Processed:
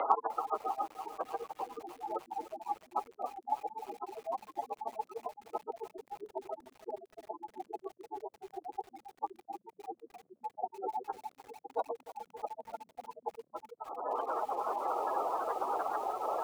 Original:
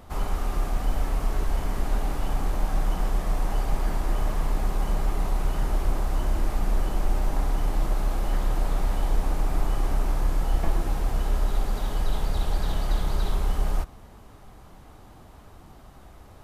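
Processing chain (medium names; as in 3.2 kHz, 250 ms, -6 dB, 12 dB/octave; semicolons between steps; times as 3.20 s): 7.57–8.89 s: comb filter that takes the minimum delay 2.9 ms; spectral gate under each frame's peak -20 dB strong; in parallel at +3 dB: peak limiter -21 dBFS, peak gain reduction 8.5 dB; on the sum: compression 16:1, threshold -28 dBFS, peak gain reduction 17 dB; mistuned SSB +51 Hz 430–3200 Hz; overload inside the chain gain 28.5 dB; bit-crushed delay 301 ms, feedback 80%, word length 10-bit, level -14 dB; trim +15.5 dB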